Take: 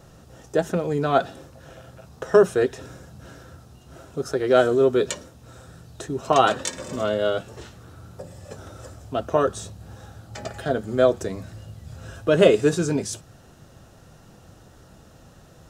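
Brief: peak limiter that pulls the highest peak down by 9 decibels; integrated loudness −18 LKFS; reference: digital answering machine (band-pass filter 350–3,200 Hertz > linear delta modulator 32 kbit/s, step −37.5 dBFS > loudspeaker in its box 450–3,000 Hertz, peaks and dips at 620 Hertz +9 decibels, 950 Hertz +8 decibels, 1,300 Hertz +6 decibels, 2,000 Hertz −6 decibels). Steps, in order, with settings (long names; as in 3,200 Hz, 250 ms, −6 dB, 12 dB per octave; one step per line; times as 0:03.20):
brickwall limiter −12 dBFS
band-pass filter 350–3,200 Hz
linear delta modulator 32 kbit/s, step −37.5 dBFS
loudspeaker in its box 450–3,000 Hz, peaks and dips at 620 Hz +9 dB, 950 Hz +8 dB, 1,300 Hz +6 dB, 2,000 Hz −6 dB
level +6.5 dB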